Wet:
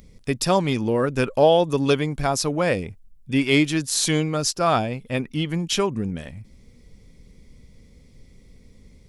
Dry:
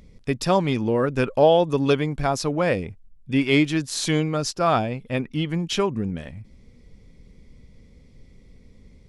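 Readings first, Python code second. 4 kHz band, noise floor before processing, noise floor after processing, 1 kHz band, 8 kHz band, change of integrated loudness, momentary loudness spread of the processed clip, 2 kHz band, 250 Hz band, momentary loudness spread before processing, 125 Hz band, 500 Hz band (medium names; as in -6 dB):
+3.0 dB, -52 dBFS, -52 dBFS, 0.0 dB, +6.5 dB, +0.5 dB, 9 LU, +1.0 dB, 0.0 dB, 9 LU, 0.0 dB, 0.0 dB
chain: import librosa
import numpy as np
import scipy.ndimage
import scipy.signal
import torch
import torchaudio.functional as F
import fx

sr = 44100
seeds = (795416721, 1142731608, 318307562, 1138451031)

y = fx.high_shelf(x, sr, hz=6400.0, db=11.5)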